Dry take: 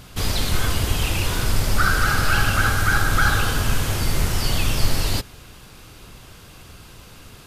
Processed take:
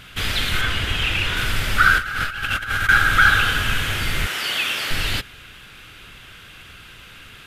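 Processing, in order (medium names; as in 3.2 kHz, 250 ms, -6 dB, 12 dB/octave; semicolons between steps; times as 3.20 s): 0.61–1.37 s: treble shelf 8.4 kHz -10.5 dB; 4.26–4.91 s: high-pass 350 Hz 12 dB/octave; high-order bell 2.2 kHz +12 dB; 1.98–2.89 s: compressor with a negative ratio -18 dBFS, ratio -0.5; trim -4 dB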